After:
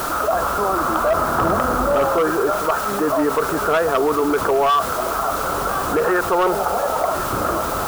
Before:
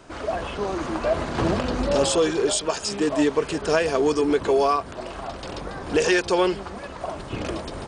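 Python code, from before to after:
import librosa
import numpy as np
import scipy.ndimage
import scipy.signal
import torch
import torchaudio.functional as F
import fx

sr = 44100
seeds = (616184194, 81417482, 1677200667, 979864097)

p1 = fx.delta_mod(x, sr, bps=64000, step_db=-31.5)
p2 = fx.ladder_lowpass(p1, sr, hz=1400.0, resonance_pct=80)
p3 = fx.spec_box(p2, sr, start_s=6.46, length_s=0.58, low_hz=390.0, high_hz=930.0, gain_db=9)
p4 = fx.quant_dither(p3, sr, seeds[0], bits=6, dither='triangular')
p5 = p3 + (p4 * 10.0 ** (-11.0 / 20.0))
p6 = fx.peak_eq(p5, sr, hz=670.0, db=5.5, octaves=1.0)
p7 = np.clip(10.0 ** (20.0 / 20.0) * p6, -1.0, 1.0) / 10.0 ** (20.0 / 20.0)
p8 = p7 + fx.echo_single(p7, sr, ms=1056, db=-22.0, dry=0)
p9 = fx.env_flatten(p8, sr, amount_pct=50)
y = p9 * 10.0 ** (7.0 / 20.0)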